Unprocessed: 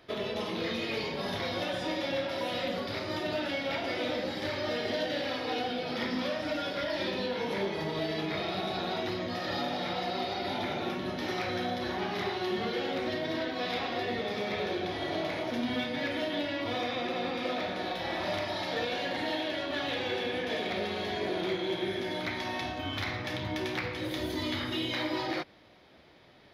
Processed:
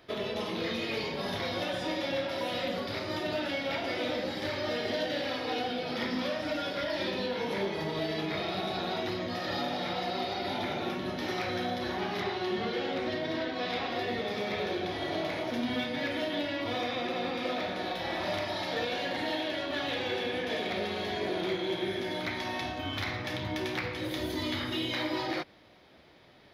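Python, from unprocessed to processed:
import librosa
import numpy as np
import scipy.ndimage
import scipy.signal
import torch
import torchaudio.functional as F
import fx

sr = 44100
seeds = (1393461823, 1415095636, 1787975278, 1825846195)

y = fx.high_shelf(x, sr, hz=11000.0, db=fx.steps((0.0, 2.5), (12.2, -10.0), (13.89, 3.0)))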